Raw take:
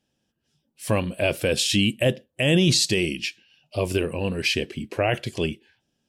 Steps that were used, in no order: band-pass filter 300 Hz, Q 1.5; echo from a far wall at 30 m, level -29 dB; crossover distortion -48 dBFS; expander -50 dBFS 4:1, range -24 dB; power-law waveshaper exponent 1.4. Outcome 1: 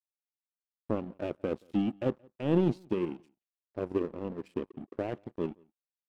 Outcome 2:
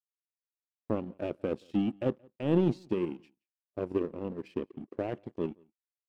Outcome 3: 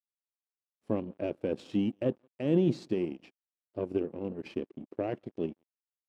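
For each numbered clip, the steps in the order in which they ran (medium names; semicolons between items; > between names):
expander > band-pass filter > crossover distortion > power-law waveshaper > echo from a far wall; crossover distortion > band-pass filter > power-law waveshaper > expander > echo from a far wall; expander > power-law waveshaper > echo from a far wall > crossover distortion > band-pass filter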